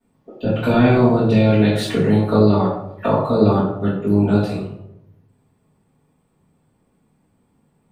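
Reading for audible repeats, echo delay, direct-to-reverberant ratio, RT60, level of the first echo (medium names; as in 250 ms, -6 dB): no echo, no echo, -13.5 dB, 0.80 s, no echo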